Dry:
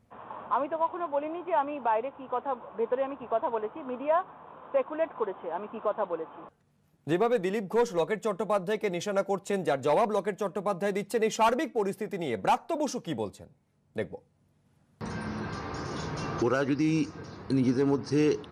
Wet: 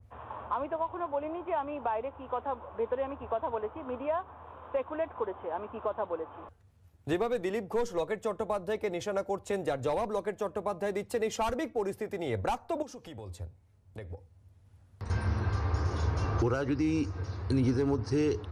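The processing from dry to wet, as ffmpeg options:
ffmpeg -i in.wav -filter_complex "[0:a]asettb=1/sr,asplit=3[link_01][link_02][link_03];[link_01]atrim=end=12.824[link_04];[link_02]atrim=start=12.82:end=15.1,asetpts=PTS-STARTPTS,afade=type=in:duration=0.004:curve=qsin,afade=type=out:start_time=2.276:duration=0.004:curve=qsin,acompressor=threshold=-40dB:ratio=5:attack=3.2:release=140:knee=1:detection=peak[link_05];[link_03]atrim=start=15.096[link_06];[link_04][link_05]acrossfade=duration=0.004:curve1=hsin:curve2=qsin[link_07];[link_07][link_06]acrossfade=duration=0.004:curve1=qsin:curve2=hsin,lowshelf=frequency=120:width_type=q:width=3:gain=10.5,acrossover=split=280|3000[link_08][link_09][link_10];[link_09]acompressor=threshold=-28dB:ratio=6[link_11];[link_08][link_11][link_10]amix=inputs=3:normalize=0,adynamicequalizer=threshold=0.00501:dfrequency=1700:dqfactor=0.7:tfrequency=1700:tqfactor=0.7:attack=5:release=100:ratio=0.375:range=2.5:mode=cutabove:tftype=highshelf" out.wav

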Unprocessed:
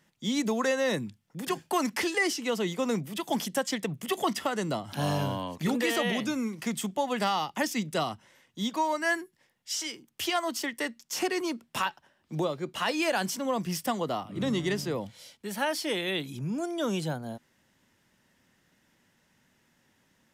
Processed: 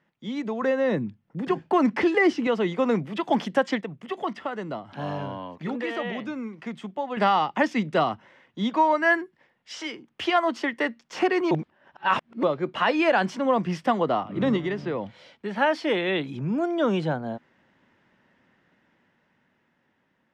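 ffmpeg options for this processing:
ffmpeg -i in.wav -filter_complex "[0:a]asettb=1/sr,asplit=3[link_01][link_02][link_03];[link_01]atrim=end=0.624[link_04];[link_02]atrim=start=0.62:end=2.47,asetpts=PTS-STARTPTS,afade=type=in:duration=0.004:curve=qsin,afade=type=out:start_time=1.846:duration=0.004:curve=qsin,lowshelf=frequency=470:gain=9.5[link_05];[link_03]atrim=start=2.466[link_06];[link_04][link_05]acrossfade=duration=0.004:curve1=hsin:curve2=qsin[link_07];[link_07][link_06]acrossfade=duration=0.004:curve1=qsin:curve2=hsin,asettb=1/sr,asplit=3[link_08][link_09][link_10];[link_08]atrim=end=14.564[link_11];[link_09]atrim=start=14.56:end=15.56,asetpts=PTS-STARTPTS,afade=type=in:duration=0.004:curve=qsin,afade=type=out:start_time=0.996:duration=0.004:curve=qsin,acrossover=split=1400|5100[link_12][link_13][link_14];[link_12]acompressor=threshold=-32dB:ratio=4[link_15];[link_13]acompressor=threshold=-41dB:ratio=4[link_16];[link_14]acompressor=threshold=-56dB:ratio=4[link_17];[link_15][link_16][link_17]amix=inputs=3:normalize=0[link_18];[link_10]atrim=start=15.556[link_19];[link_11][link_18]acrossfade=duration=0.004:curve1=hsin:curve2=qsin[link_20];[link_20][link_19]acrossfade=duration=0.004:curve1=qsin:curve2=hsin,asplit=5[link_21][link_22][link_23][link_24][link_25];[link_21]atrim=end=3.812[link_26];[link_22]atrim=start=3.808:end=7.172,asetpts=PTS-STARTPTS,volume=-8.5dB[link_27];[link_23]atrim=start=7.168:end=11.512[link_28];[link_24]atrim=start=11.508:end=12.432,asetpts=PTS-STARTPTS,areverse[link_29];[link_25]atrim=start=12.428[link_30];[link_26][link_27]acrossfade=duration=0.004:curve1=hsin:curve2=hsin[link_31];[link_31][link_28]acrossfade=duration=0.004:curve1=hsin:curve2=hsin[link_32];[link_32][link_29]acrossfade=duration=0.004:curve1=hsin:curve2=hsin[link_33];[link_33][link_30]acrossfade=duration=0.004:curve1=hsin:curve2=hsin,lowpass=2200,lowshelf=frequency=110:gain=-11.5,dynaudnorm=framelen=600:gausssize=7:maxgain=8dB" out.wav

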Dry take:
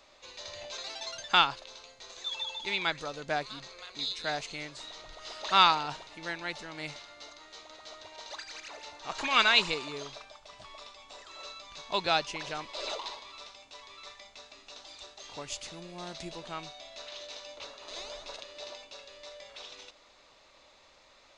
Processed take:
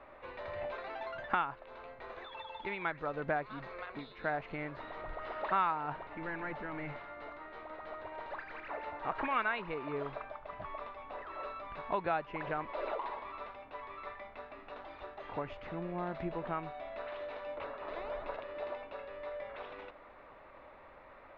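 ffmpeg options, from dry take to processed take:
ffmpeg -i in.wav -filter_complex "[0:a]asettb=1/sr,asplit=3[link_01][link_02][link_03];[link_01]atrim=end=2.374[link_04];[link_02]atrim=start=2.37:end=3.86,asetpts=PTS-STARTPTS,afade=type=in:duration=0.004:curve=qsin,afade=type=out:start_time=1.486:duration=0.004:curve=qsin,highshelf=frequency=5800:gain=11.5[link_05];[link_03]atrim=start=3.856[link_06];[link_04][link_05]acrossfade=duration=0.004:curve1=hsin:curve2=qsin[link_07];[link_07][link_06]acrossfade=duration=0.004:curve1=qsin:curve2=hsin,asettb=1/sr,asplit=3[link_08][link_09][link_10];[link_08]atrim=end=6.074[link_11];[link_09]atrim=start=6.07:end=8.71,asetpts=PTS-STARTPTS,afade=type=in:duration=0.004:curve=qsin,afade=type=out:start_time=2.636:duration=0.004:curve=qsin,aeval=exprs='(tanh(112*val(0)+0.25)-tanh(0.25))/112':channel_layout=same[link_12];[link_10]atrim=start=8.706[link_13];[link_11][link_12]acrossfade=duration=0.004:curve1=hsin:curve2=qsin[link_14];[link_14][link_13]acrossfade=duration=0.004:curve1=qsin:curve2=hsin,acompressor=threshold=-41dB:ratio=2.5,lowpass=frequency=1900:width=0.5412,lowpass=frequency=1900:width=1.3066,volume=7.5dB" out.wav

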